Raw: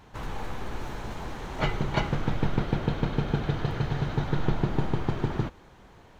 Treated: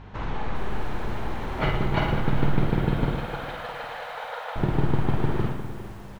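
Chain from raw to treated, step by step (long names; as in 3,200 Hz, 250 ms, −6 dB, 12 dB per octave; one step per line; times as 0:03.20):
low-pass filter 3,400 Hz 12 dB per octave
in parallel at −3 dB: downward compressor, threshold −37 dBFS, peak gain reduction 17 dB
on the sum: mains hum 50 Hz, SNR 18 dB
0:03.15–0:04.56: linear-phase brick-wall high-pass 460 Hz
reverse bouncing-ball delay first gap 50 ms, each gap 1.3×, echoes 5
feedback echo at a low word length 405 ms, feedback 35%, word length 7 bits, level −14 dB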